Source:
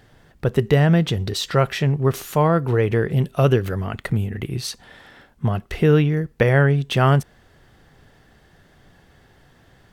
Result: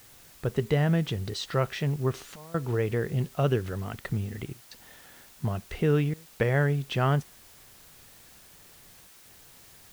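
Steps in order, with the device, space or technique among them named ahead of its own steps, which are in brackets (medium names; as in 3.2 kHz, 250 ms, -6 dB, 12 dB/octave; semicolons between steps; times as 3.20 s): worn cassette (low-pass 7.3 kHz; wow and flutter; level dips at 2.36/4.53/6.14/9.07 s, 181 ms -22 dB; white noise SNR 24 dB); trim -8.5 dB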